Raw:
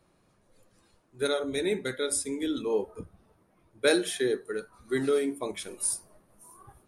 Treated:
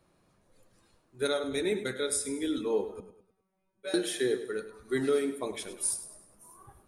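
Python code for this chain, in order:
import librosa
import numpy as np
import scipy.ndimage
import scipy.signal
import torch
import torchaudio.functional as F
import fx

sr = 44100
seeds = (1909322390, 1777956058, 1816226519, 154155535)

p1 = fx.comb_fb(x, sr, f0_hz=190.0, decay_s=0.39, harmonics='all', damping=0.0, mix_pct=100, at=(3.0, 3.94))
p2 = p1 + fx.echo_feedback(p1, sr, ms=102, feedback_pct=43, wet_db=-12.5, dry=0)
y = p2 * 10.0 ** (-1.5 / 20.0)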